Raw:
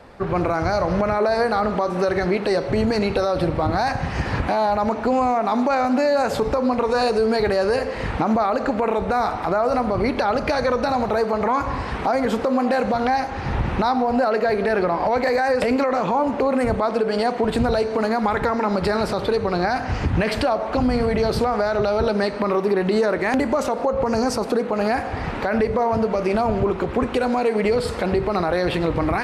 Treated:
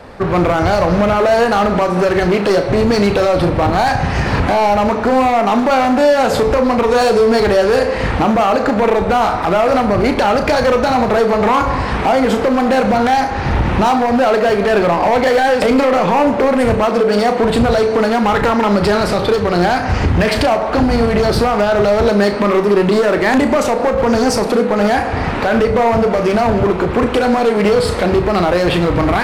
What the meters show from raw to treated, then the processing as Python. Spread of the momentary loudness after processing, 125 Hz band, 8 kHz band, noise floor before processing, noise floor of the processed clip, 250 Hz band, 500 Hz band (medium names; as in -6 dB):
3 LU, +8.0 dB, no reading, -28 dBFS, -19 dBFS, +7.5 dB, +7.5 dB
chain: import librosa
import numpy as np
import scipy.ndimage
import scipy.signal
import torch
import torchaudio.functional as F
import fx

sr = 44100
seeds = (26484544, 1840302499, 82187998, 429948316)

y = np.clip(10.0 ** (18.0 / 20.0) * x, -1.0, 1.0) / 10.0 ** (18.0 / 20.0)
y = fx.room_flutter(y, sr, wall_m=5.9, rt60_s=0.23)
y = y * 10.0 ** (8.5 / 20.0)